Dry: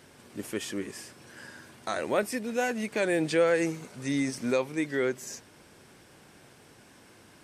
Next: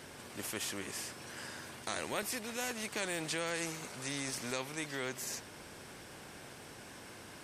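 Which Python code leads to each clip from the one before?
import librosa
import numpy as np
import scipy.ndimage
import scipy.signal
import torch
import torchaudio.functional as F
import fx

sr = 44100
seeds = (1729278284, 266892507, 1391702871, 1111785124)

y = fx.spectral_comp(x, sr, ratio=2.0)
y = y * 10.0 ** (-6.0 / 20.0)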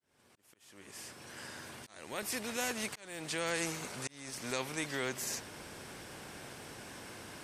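y = fx.fade_in_head(x, sr, length_s=2.29)
y = fx.auto_swell(y, sr, attack_ms=538.0)
y = y * 10.0 ** (2.5 / 20.0)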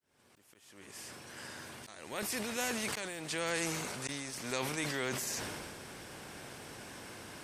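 y = fx.sustainer(x, sr, db_per_s=25.0)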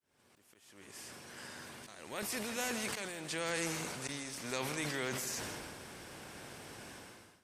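y = fx.fade_out_tail(x, sr, length_s=0.53)
y = y + 10.0 ** (-12.0 / 20.0) * np.pad(y, (int(162 * sr / 1000.0), 0))[:len(y)]
y = y * 10.0 ** (-2.0 / 20.0)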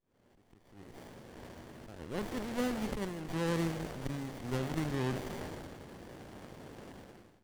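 y = fx.running_max(x, sr, window=33)
y = y * 10.0 ** (3.0 / 20.0)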